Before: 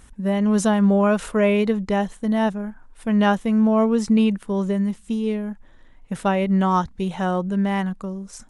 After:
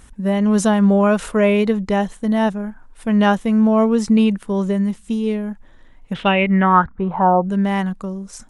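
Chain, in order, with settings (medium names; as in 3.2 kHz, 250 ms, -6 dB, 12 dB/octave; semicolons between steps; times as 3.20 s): 6.13–7.43 s: resonant low-pass 3.5 kHz -> 760 Hz, resonance Q 4.8; trim +3 dB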